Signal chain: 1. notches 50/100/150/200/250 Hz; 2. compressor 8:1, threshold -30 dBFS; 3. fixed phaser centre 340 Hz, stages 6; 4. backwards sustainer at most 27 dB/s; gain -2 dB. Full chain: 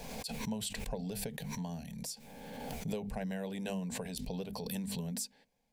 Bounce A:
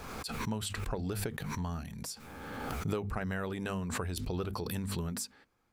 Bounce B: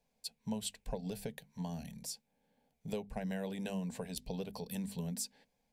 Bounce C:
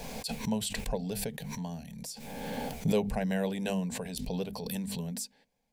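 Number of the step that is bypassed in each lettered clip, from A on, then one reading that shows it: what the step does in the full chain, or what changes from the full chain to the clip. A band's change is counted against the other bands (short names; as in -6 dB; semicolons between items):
3, 2 kHz band +4.5 dB; 4, crest factor change +2.0 dB; 2, mean gain reduction 3.5 dB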